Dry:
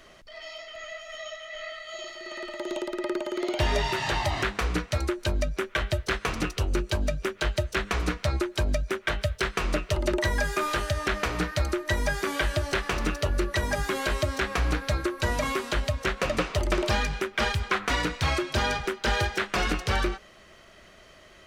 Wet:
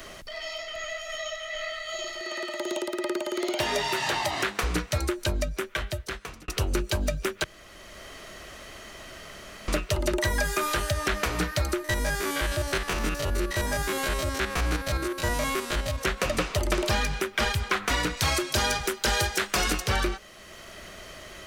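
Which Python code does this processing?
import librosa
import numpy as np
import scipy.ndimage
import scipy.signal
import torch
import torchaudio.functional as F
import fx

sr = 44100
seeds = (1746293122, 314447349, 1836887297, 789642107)

y = fx.highpass(x, sr, hz=230.0, slope=12, at=(2.2, 4.63))
y = fx.spec_steps(y, sr, hold_ms=50, at=(11.84, 15.98))
y = fx.bass_treble(y, sr, bass_db=-2, treble_db=8, at=(18.17, 19.87))
y = fx.edit(y, sr, fx.fade_out_span(start_s=5.25, length_s=1.23),
    fx.room_tone_fill(start_s=7.44, length_s=2.24), tone=tone)
y = fx.high_shelf(y, sr, hz=7600.0, db=11.5)
y = fx.band_squash(y, sr, depth_pct=40)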